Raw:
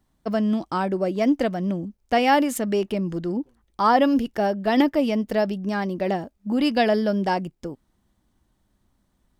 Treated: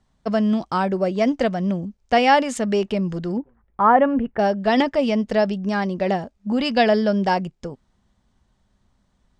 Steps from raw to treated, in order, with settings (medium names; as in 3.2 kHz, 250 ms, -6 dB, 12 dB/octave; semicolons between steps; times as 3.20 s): low-pass 7.8 kHz 24 dB/octave, from 3.38 s 2 kHz, from 4.39 s 7.7 kHz; peaking EQ 310 Hz -12.5 dB 0.25 oct; trim +3.5 dB